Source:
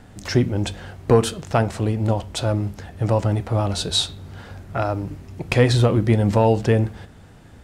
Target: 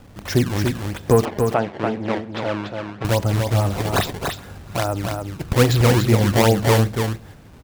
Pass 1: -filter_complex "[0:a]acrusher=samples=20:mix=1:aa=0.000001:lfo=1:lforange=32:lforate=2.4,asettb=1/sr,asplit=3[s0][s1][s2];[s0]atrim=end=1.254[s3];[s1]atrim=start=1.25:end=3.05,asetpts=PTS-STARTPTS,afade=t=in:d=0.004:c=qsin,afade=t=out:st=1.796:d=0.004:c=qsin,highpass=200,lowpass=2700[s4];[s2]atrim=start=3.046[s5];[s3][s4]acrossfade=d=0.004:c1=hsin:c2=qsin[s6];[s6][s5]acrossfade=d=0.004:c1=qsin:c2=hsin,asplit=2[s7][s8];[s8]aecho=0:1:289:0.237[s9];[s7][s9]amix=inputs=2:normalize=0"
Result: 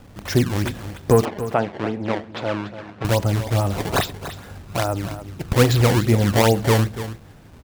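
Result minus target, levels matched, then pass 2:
echo-to-direct -7.5 dB
-filter_complex "[0:a]acrusher=samples=20:mix=1:aa=0.000001:lfo=1:lforange=32:lforate=2.4,asettb=1/sr,asplit=3[s0][s1][s2];[s0]atrim=end=1.254[s3];[s1]atrim=start=1.25:end=3.05,asetpts=PTS-STARTPTS,afade=t=in:d=0.004:c=qsin,afade=t=out:st=1.796:d=0.004:c=qsin,highpass=200,lowpass=2700[s4];[s2]atrim=start=3.046[s5];[s3][s4]acrossfade=d=0.004:c1=hsin:c2=qsin[s6];[s6][s5]acrossfade=d=0.004:c1=qsin:c2=hsin,asplit=2[s7][s8];[s8]aecho=0:1:289:0.562[s9];[s7][s9]amix=inputs=2:normalize=0"

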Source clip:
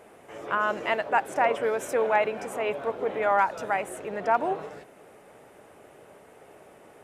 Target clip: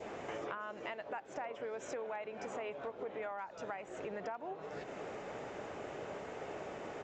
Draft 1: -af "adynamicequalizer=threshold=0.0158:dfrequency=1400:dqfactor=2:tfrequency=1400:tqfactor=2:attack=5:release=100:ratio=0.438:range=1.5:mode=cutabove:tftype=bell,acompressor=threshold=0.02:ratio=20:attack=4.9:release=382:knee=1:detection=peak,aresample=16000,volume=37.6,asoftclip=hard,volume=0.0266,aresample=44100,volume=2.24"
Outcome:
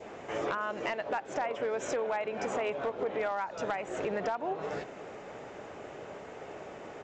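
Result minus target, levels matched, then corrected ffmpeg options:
compression: peak gain reduction -9.5 dB
-af "adynamicequalizer=threshold=0.0158:dfrequency=1400:dqfactor=2:tfrequency=1400:tqfactor=2:attack=5:release=100:ratio=0.438:range=1.5:mode=cutabove:tftype=bell,acompressor=threshold=0.00631:ratio=20:attack=4.9:release=382:knee=1:detection=peak,aresample=16000,volume=37.6,asoftclip=hard,volume=0.0266,aresample=44100,volume=2.24"

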